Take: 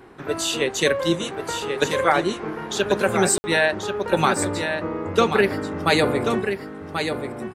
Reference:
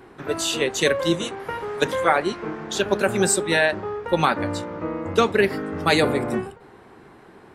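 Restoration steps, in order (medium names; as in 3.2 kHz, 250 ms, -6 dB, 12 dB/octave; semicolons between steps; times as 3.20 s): room tone fill 3.38–3.44 s; inverse comb 1085 ms -7 dB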